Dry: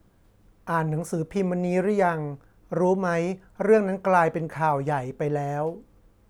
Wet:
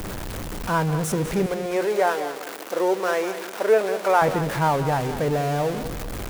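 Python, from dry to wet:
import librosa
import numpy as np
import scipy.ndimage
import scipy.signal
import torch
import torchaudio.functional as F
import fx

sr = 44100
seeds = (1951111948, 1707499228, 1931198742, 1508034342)

y = x + 0.5 * 10.0 ** (-25.5 / 20.0) * np.sign(x)
y = fx.highpass(y, sr, hz=330.0, slope=24, at=(1.46, 4.22))
y = fx.echo_crushed(y, sr, ms=196, feedback_pct=35, bits=8, wet_db=-11.5)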